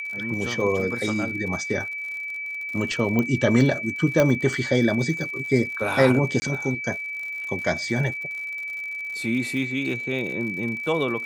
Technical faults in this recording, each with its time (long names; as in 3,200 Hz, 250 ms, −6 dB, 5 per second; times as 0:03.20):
surface crackle 75 per second −33 dBFS
whistle 2,300 Hz −29 dBFS
0:03.19: click −12 dBFS
0:04.20: click −7 dBFS
0:06.40–0:06.42: drop-out 20 ms